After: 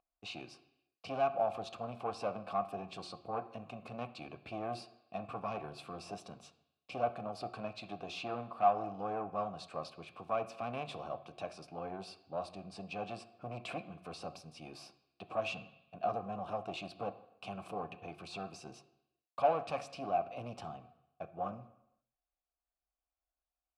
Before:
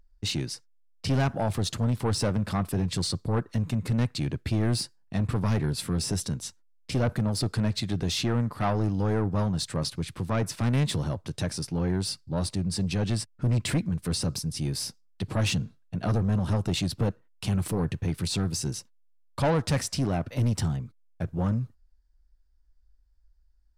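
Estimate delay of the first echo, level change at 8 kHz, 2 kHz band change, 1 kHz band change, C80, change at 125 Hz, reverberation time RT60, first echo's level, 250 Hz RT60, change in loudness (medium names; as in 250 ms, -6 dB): no echo, -24.5 dB, -10.0 dB, 0.0 dB, 17.0 dB, -25.0 dB, 0.85 s, no echo, 0.80 s, -11.5 dB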